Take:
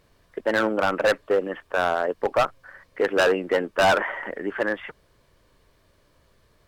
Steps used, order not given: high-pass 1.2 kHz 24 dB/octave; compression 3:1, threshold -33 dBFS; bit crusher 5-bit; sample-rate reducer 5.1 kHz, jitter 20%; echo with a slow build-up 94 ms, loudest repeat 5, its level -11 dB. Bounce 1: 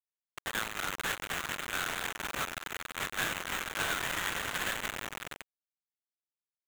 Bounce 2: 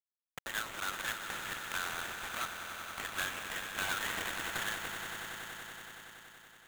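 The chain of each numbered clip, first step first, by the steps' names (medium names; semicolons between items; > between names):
compression > echo with a slow build-up > bit crusher > high-pass > sample-rate reducer; bit crusher > compression > high-pass > sample-rate reducer > echo with a slow build-up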